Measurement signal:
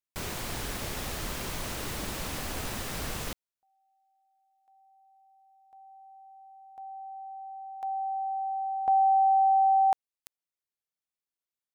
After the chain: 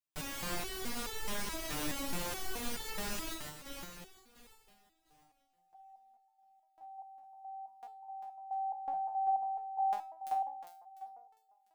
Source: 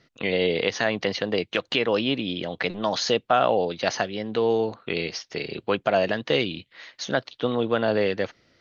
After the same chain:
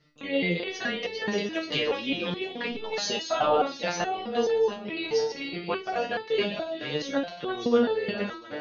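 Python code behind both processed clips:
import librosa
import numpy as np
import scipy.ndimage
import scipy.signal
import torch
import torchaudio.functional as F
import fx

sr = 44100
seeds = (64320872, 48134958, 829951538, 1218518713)

y = fx.reverse_delay_fb(x, sr, ms=349, feedback_pct=47, wet_db=-6)
y = fx.room_flutter(y, sr, wall_m=8.6, rt60_s=0.24)
y = fx.resonator_held(y, sr, hz=4.7, low_hz=150.0, high_hz=440.0)
y = F.gain(torch.from_numpy(y), 8.5).numpy()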